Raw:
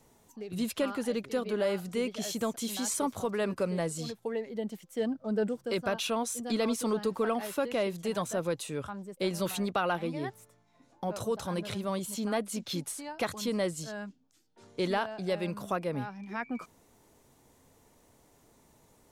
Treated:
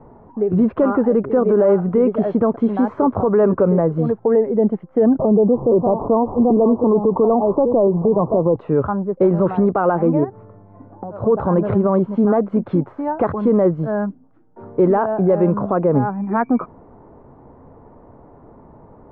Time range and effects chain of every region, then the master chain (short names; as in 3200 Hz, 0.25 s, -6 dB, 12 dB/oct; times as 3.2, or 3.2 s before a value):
5.19–8.56 delta modulation 64 kbps, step -44 dBFS + steep low-pass 1100 Hz 72 dB/oct + three-band squash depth 100%
10.23–11.22 compressor 16:1, threshold -45 dBFS + buzz 100 Hz, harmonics 6, -66 dBFS -6 dB/oct
whole clip: LPF 1200 Hz 24 dB/oct; dynamic EQ 400 Hz, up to +4 dB, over -46 dBFS, Q 3.3; maximiser +26 dB; gain -6.5 dB